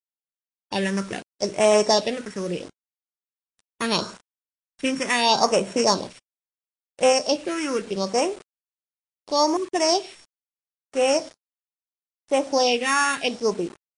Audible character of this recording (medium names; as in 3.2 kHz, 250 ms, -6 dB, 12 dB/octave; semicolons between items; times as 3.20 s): a buzz of ramps at a fixed pitch in blocks of 8 samples; phasing stages 4, 0.75 Hz, lowest notch 670–4600 Hz; a quantiser's noise floor 8-bit, dither none; MP3